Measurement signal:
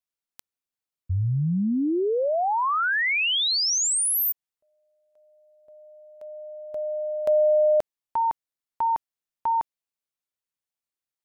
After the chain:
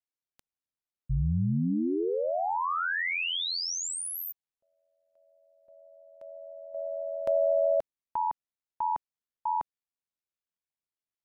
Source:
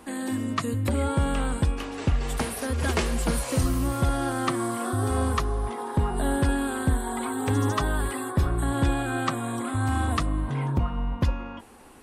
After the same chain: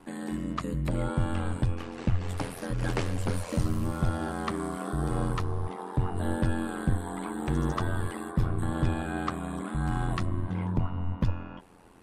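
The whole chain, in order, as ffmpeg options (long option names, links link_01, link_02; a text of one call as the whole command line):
ffmpeg -i in.wav -af "aemphasis=mode=reproduction:type=cd,aeval=exprs='val(0)*sin(2*PI*43*n/s)':channel_layout=same,bass=frequency=250:gain=3,treble=frequency=4000:gain=2,volume=-3dB" out.wav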